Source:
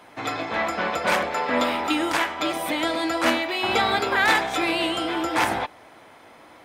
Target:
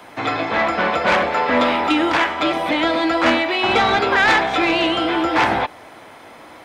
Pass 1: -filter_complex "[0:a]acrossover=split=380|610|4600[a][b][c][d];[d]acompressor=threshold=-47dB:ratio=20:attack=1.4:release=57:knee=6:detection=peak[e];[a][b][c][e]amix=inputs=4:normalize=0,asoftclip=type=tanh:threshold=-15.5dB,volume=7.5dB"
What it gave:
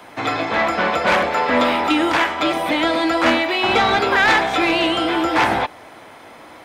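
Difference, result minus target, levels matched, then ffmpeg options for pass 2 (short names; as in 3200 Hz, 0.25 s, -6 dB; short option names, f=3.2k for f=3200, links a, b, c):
compressor: peak gain reduction -9.5 dB
-filter_complex "[0:a]acrossover=split=380|610|4600[a][b][c][d];[d]acompressor=threshold=-57dB:ratio=20:attack=1.4:release=57:knee=6:detection=peak[e];[a][b][c][e]amix=inputs=4:normalize=0,asoftclip=type=tanh:threshold=-15.5dB,volume=7.5dB"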